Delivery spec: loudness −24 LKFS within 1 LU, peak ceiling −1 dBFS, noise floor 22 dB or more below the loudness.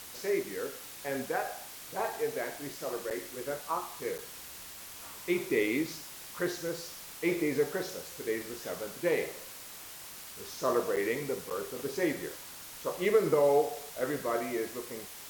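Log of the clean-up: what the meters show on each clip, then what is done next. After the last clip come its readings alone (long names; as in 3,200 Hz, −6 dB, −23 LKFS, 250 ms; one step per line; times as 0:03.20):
number of dropouts 4; longest dropout 7.6 ms; background noise floor −47 dBFS; target noise floor −56 dBFS; integrated loudness −33.5 LKFS; sample peak −14.0 dBFS; target loudness −24.0 LKFS
→ repair the gap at 0:03.10/0:04.18/0:10.96/0:11.50, 7.6 ms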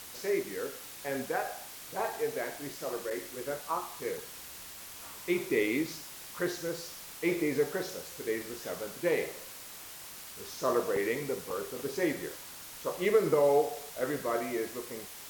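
number of dropouts 0; background noise floor −47 dBFS; target noise floor −56 dBFS
→ noise reduction from a noise print 9 dB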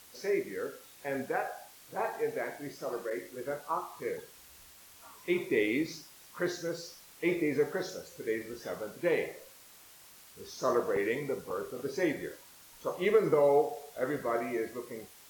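background noise floor −56 dBFS; integrated loudness −33.0 LKFS; sample peak −14.0 dBFS; target loudness −24.0 LKFS
→ level +9 dB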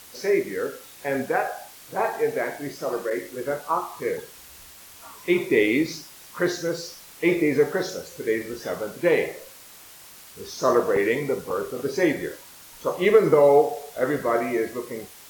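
integrated loudness −24.0 LKFS; sample peak −5.0 dBFS; background noise floor −47 dBFS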